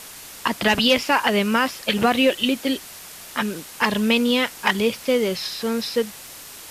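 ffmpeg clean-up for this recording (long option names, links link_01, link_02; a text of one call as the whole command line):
ffmpeg -i in.wav -af "adeclick=threshold=4,afftdn=noise_reduction=27:noise_floor=-40" out.wav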